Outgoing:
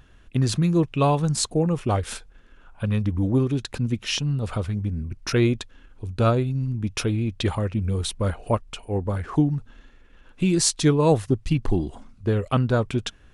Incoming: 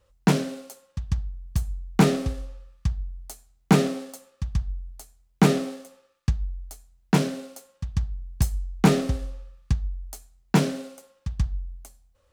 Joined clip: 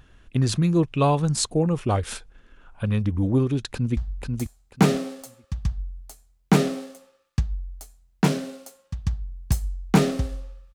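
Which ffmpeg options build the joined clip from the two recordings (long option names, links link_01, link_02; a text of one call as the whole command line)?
ffmpeg -i cue0.wav -i cue1.wav -filter_complex "[0:a]apad=whole_dur=10.74,atrim=end=10.74,atrim=end=3.972[link_01];[1:a]atrim=start=2.868:end=9.64[link_02];[link_01][link_02]acrossfade=duration=0.004:curve1=hsin:curve2=hsin,asplit=2[link_03][link_04];[link_04]afade=type=in:start_time=3.71:duration=0.01,afade=type=out:start_time=3.97:duration=0.01,aecho=0:1:490|980|1470:0.668344|0.133669|0.0267338[link_05];[link_03][link_05]amix=inputs=2:normalize=0" out.wav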